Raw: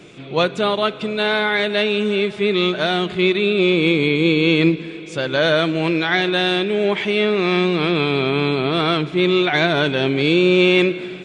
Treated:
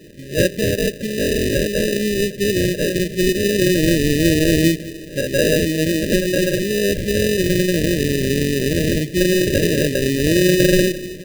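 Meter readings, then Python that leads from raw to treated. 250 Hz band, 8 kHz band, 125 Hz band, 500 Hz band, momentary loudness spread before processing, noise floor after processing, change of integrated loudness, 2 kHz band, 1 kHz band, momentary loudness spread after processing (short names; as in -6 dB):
+1.0 dB, n/a, +3.5 dB, 0.0 dB, 5 LU, -34 dBFS, 0.0 dB, -4.0 dB, under -30 dB, 5 LU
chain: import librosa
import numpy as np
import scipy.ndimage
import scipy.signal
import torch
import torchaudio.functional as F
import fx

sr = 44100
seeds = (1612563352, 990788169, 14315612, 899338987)

y = fx.sample_hold(x, sr, seeds[0], rate_hz=1100.0, jitter_pct=0)
y = fx.brickwall_bandstop(y, sr, low_hz=630.0, high_hz=1600.0)
y = y * 10.0 ** (1.0 / 20.0)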